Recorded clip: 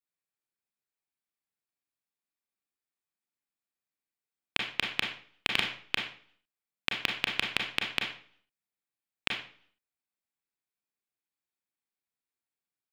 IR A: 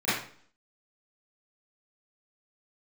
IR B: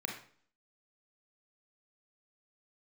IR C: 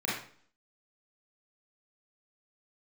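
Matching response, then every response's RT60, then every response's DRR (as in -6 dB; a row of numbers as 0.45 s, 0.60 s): B; 0.50 s, 0.50 s, 0.50 s; -16.0 dB, 0.5 dB, -7.5 dB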